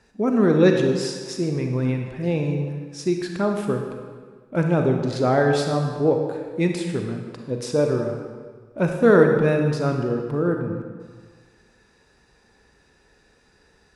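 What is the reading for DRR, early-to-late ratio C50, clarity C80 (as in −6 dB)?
3.0 dB, 4.0 dB, 5.5 dB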